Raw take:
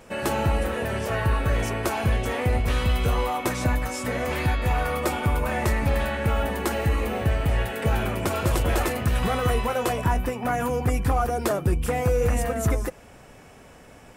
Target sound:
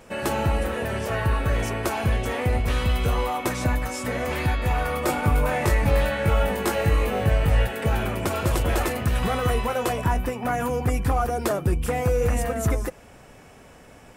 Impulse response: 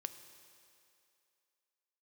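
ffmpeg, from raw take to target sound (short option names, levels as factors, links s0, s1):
-filter_complex "[0:a]asettb=1/sr,asplit=3[s0][s1][s2];[s0]atrim=end=5.064[s3];[s1]atrim=start=5.06:end=7.67,asetpts=PTS-STARTPTS,afade=t=in:d=0.004:c=qsin,afade=t=out:st=2.606:d=0.004:c=qsin,asplit=2[s4][s5];[s5]adelay=20,volume=0.75[s6];[s4][s6]amix=inputs=2:normalize=0,atrim=end_sample=115101[s7];[s2]atrim=start=7.666[s8];[s3][s7]acrossfade=d=0.004:c1=hsin:c2=qsin[s9];[s9][s8]acrossfade=d=0.004:c1=qsin:c2=hsin"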